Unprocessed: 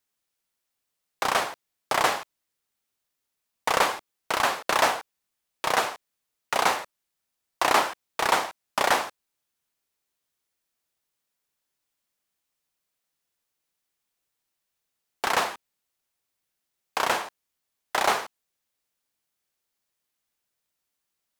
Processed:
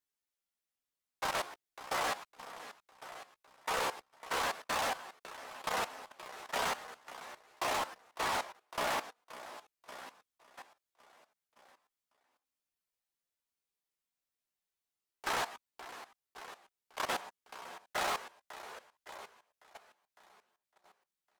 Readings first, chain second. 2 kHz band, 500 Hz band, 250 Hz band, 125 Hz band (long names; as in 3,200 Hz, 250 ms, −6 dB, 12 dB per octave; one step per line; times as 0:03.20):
−10.5 dB, −10.5 dB, −10.0 dB, −8.0 dB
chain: on a send: repeating echo 556 ms, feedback 51%, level −10.5 dB
on the sum: multi-voice chorus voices 4, 0.15 Hz, delay 14 ms, depth 2.8 ms
hard clipping −24.5 dBFS, distortion −9 dB
output level in coarse steps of 15 dB
level −3 dB